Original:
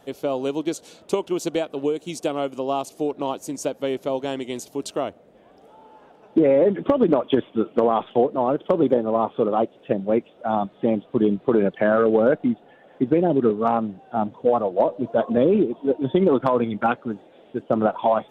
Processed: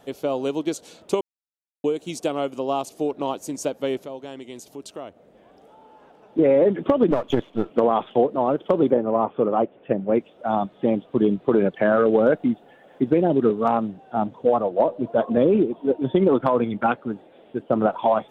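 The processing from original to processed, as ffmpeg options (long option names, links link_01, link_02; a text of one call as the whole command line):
ffmpeg -i in.wav -filter_complex "[0:a]asettb=1/sr,asplit=3[link_01][link_02][link_03];[link_01]atrim=end=4.024[link_04];[link_02]atrim=start=4.02:end=6.39,asetpts=PTS-STARTPTS,afade=type=in:duration=0.004:curve=qsin,afade=type=out:start_time=2.366:duration=0.004:curve=qsin,acompressor=threshold=-48dB:ratio=1.5:attack=3.2:release=140:knee=1:detection=peak[link_05];[link_03]atrim=start=6.386[link_06];[link_04][link_05]acrossfade=duration=0.004:curve1=hsin:curve2=qsin[link_07];[link_07][link_06]acrossfade=duration=0.004:curve1=qsin:curve2=hsin,asettb=1/sr,asplit=3[link_08][link_09][link_10];[link_08]atrim=end=7.114[link_11];[link_09]atrim=start=7.11:end=7.7,asetpts=PTS-STARTPTS,afade=type=in:duration=0.004:curve=qsin,afade=type=out:start_time=0.586:duration=0.004:curve=qsin,aeval=exprs='if(lt(val(0),0),0.447*val(0),val(0))':channel_layout=same[link_12];[link_10]atrim=start=7.696[link_13];[link_11][link_12]acrossfade=duration=0.004:curve1=hsin:curve2=qsin[link_14];[link_14][link_13]acrossfade=duration=0.004:curve1=qsin:curve2=hsin,asettb=1/sr,asplit=3[link_15][link_16][link_17];[link_15]atrim=end=8.904[link_18];[link_16]atrim=start=8.9:end=10.15,asetpts=PTS-STARTPTS,afade=type=in:duration=0.004:curve=qsin,afade=type=out:start_time=1.246:duration=0.004:curve=qsin,lowpass=frequency=2700:width=0.5412,lowpass=frequency=2700:width=1.3066[link_19];[link_17]atrim=start=10.146[link_20];[link_18][link_19]acrossfade=duration=0.004:curve1=hsin:curve2=qsin[link_21];[link_21][link_20]acrossfade=duration=0.004:curve1=qsin:curve2=hsin,asettb=1/sr,asplit=3[link_22][link_23][link_24];[link_22]atrim=end=12.064[link_25];[link_23]atrim=start=12.06:end=13.89,asetpts=PTS-STARTPTS,afade=type=in:duration=0.004:curve=qsin,afade=type=out:start_time=1.826:duration=0.004:curve=qsin,highshelf=frequency=7500:gain=8.5[link_26];[link_24]atrim=start=13.886[link_27];[link_25][link_26]acrossfade=duration=0.004:curve1=hsin:curve2=qsin[link_28];[link_28][link_27]acrossfade=duration=0.004:curve1=qsin:curve2=hsin,asettb=1/sr,asplit=3[link_29][link_30][link_31];[link_29]atrim=end=14.564[link_32];[link_30]atrim=start=14.56:end=17.91,asetpts=PTS-STARTPTS,afade=type=in:duration=0.004:curve=qsin,afade=type=out:start_time=3.346:duration=0.004:curve=qsin,equalizer=frequency=6100:width=1.6:gain=-8[link_33];[link_31]atrim=start=17.906[link_34];[link_32][link_33]acrossfade=duration=0.004:curve1=hsin:curve2=qsin[link_35];[link_35][link_34]acrossfade=duration=0.004:curve1=qsin:curve2=hsin,asplit=3[link_36][link_37][link_38];[link_36]atrim=end=1.21,asetpts=PTS-STARTPTS,afade=type=out:start_time=1.206:duration=0.004:curve=hsin[link_39];[link_37]atrim=start=1.21:end=1.84,asetpts=PTS-STARTPTS,volume=0[link_40];[link_38]atrim=start=1.84,asetpts=PTS-STARTPTS,afade=type=in:duration=0.004:curve=hsin[link_41];[link_39][link_40][link_41]concat=n=3:v=0:a=1" out.wav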